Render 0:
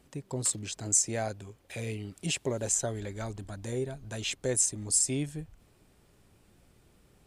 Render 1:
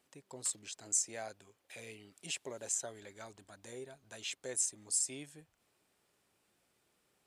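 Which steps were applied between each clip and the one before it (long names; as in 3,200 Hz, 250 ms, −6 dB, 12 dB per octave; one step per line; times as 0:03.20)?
high-pass filter 710 Hz 6 dB per octave
level −7 dB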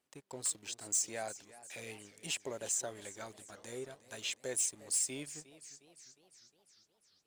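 leveller curve on the samples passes 2
feedback echo with a swinging delay time 354 ms, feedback 59%, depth 151 cents, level −17 dB
level −4.5 dB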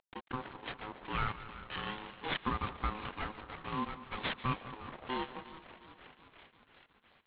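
variable-slope delta modulation 16 kbit/s
echo with a time of its own for lows and highs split 1,100 Hz, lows 197 ms, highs 143 ms, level −15.5 dB
ring modulation 640 Hz
level +10.5 dB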